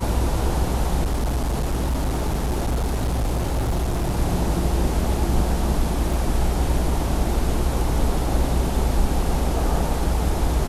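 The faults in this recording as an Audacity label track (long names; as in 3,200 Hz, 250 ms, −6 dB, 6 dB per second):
1.030000	4.190000	clipping −18.5 dBFS
6.130000	6.130000	drop-out 2.6 ms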